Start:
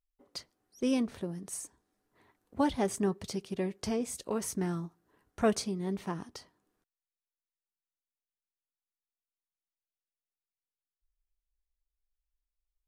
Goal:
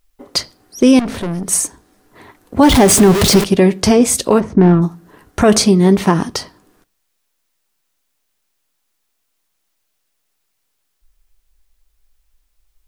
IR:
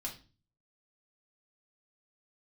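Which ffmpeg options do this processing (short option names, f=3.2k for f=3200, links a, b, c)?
-filter_complex "[0:a]asettb=1/sr,asplit=3[a][b][c];[a]atrim=end=2.634[d];[b]atrim=start=2.63:end=3.44,asetpts=PTS-STARTPTS,afade=t=in:d=0.004:c=qsin,afade=t=out:st=0.806:d=0.004:c=qsin,aeval=exprs='val(0)+0.5*0.02*sgn(val(0))':c=same[e];[c]atrim=start=3.436[f];[d][e]acrossfade=d=0.004:c1=hsin:c2=qsin[g];[g][f]acrossfade=d=0.004:c1=qsin:c2=hsin,asplit=3[h][i][j];[h]afade=t=out:st=4.39:d=0.02[k];[i]adynamicsmooth=sensitivity=2:basefreq=800,afade=t=in:st=4.39:d=0.02,afade=t=out:st=4.81:d=0.02[l];[j]afade=t=in:st=4.81:d=0.02[m];[k][l][m]amix=inputs=3:normalize=0,asplit=2[n][o];[1:a]atrim=start_sample=2205[p];[o][p]afir=irnorm=-1:irlink=0,volume=-14.5dB[q];[n][q]amix=inputs=2:normalize=0,asettb=1/sr,asplit=3[r][s][t];[r]atrim=end=0.994[u];[s]atrim=start=0.99:end=1.49,asetpts=PTS-STARTPTS,afade=t=in:d=0.004:c=qsin,afade=t=out:st=0.496:d=0.004:c=qsin,aeval=exprs='(tanh(126*val(0)+0.3)-tanh(0.3))/126':c=same[v];[t]atrim=start=1.486[w];[u][v]acrossfade=d=0.004:c1=hsin:c2=qsin[x];[x][w]acrossfade=d=0.004:c1=qsin:c2=hsin,alimiter=level_in=24.5dB:limit=-1dB:release=50:level=0:latency=1,volume=-1dB"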